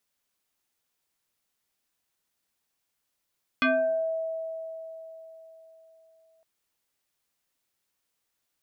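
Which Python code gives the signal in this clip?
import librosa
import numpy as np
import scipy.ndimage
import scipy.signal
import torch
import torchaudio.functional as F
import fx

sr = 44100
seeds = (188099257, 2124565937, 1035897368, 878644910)

y = fx.fm2(sr, length_s=2.81, level_db=-19.0, carrier_hz=649.0, ratio=1.4, index=2.9, index_s=0.56, decay_s=3.97, shape='exponential')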